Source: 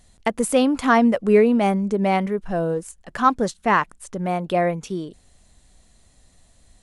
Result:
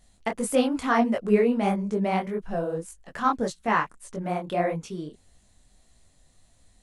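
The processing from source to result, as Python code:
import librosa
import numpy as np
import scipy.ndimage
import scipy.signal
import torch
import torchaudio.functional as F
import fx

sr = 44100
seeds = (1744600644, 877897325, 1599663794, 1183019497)

y = fx.detune_double(x, sr, cents=58)
y = y * librosa.db_to_amplitude(-1.5)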